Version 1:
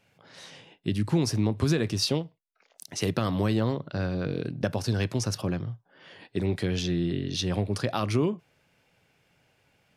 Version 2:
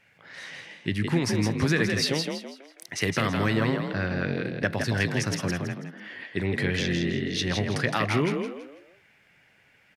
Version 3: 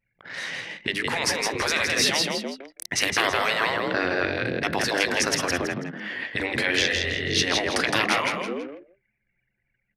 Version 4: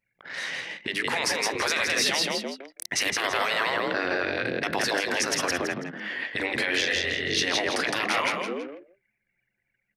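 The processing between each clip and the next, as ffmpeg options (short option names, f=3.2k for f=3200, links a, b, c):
-filter_complex "[0:a]equalizer=f=1.9k:w=1.7:g=14,asplit=2[a][b];[b]asplit=4[c][d][e][f];[c]adelay=164,afreqshift=46,volume=-5dB[g];[d]adelay=328,afreqshift=92,volume=-14.4dB[h];[e]adelay=492,afreqshift=138,volume=-23.7dB[i];[f]adelay=656,afreqshift=184,volume=-33.1dB[j];[g][h][i][j]amix=inputs=4:normalize=0[k];[a][k]amix=inputs=2:normalize=0,volume=-1dB"
-af "afftfilt=real='re*lt(hypot(re,im),0.158)':imag='im*lt(hypot(re,im),0.158)':win_size=1024:overlap=0.75,anlmdn=0.01,bandreject=f=50:t=h:w=6,bandreject=f=100:t=h:w=6,bandreject=f=150:t=h:w=6,bandreject=f=200:t=h:w=6,volume=8.5dB"
-af "lowshelf=f=140:g=-11.5,alimiter=limit=-14dB:level=0:latency=1:release=28"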